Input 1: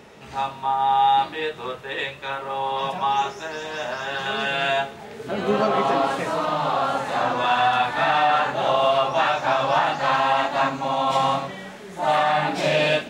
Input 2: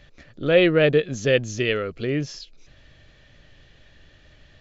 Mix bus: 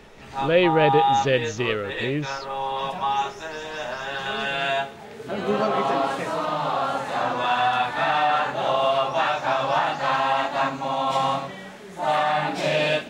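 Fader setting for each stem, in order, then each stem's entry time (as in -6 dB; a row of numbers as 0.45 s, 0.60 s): -2.0 dB, -2.0 dB; 0.00 s, 0.00 s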